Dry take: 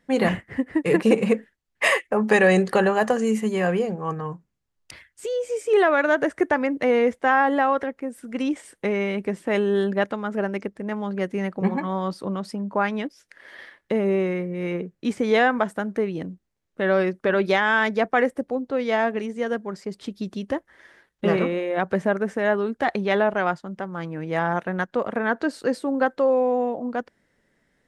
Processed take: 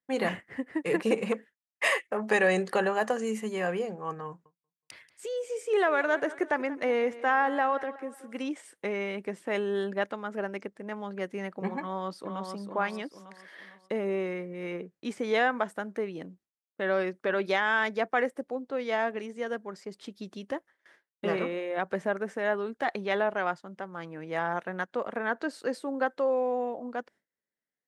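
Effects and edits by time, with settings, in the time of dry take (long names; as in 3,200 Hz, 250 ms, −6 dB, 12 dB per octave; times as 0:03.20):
0:01.32–0:02.29: saturating transformer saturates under 760 Hz
0:04.27–0:08.47: repeating echo 185 ms, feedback 42%, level −17 dB
0:11.80–0:12.52: delay throw 450 ms, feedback 40%, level −5.5 dB
whole clip: noise gate with hold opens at −39 dBFS; high-pass filter 340 Hz 6 dB per octave; level −5.5 dB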